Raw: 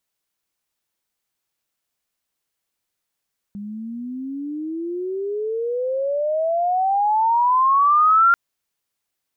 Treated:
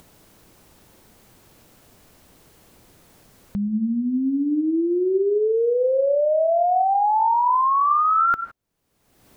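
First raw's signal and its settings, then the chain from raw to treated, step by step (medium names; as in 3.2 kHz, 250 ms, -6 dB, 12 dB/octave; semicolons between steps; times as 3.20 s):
sweep logarithmic 200 Hz -> 1.4 kHz -29 dBFS -> -10.5 dBFS 4.79 s
tilt shelf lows +9.5 dB, about 790 Hz; gated-style reverb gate 180 ms rising, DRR 10.5 dB; upward compressor, threshold -28 dBFS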